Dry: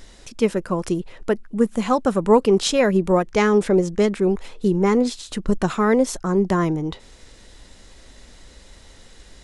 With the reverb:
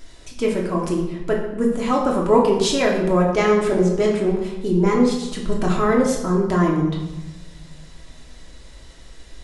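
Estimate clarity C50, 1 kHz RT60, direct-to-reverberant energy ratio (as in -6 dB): 4.5 dB, 1.0 s, -3.0 dB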